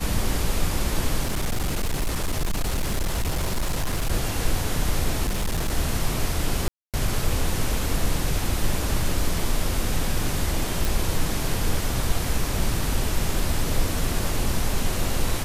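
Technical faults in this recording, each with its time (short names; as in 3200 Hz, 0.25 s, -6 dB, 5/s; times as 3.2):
1.22–4.12 clipped -20 dBFS
5.25–5.73 clipped -20 dBFS
6.68–6.94 gap 0.257 s
10.85 pop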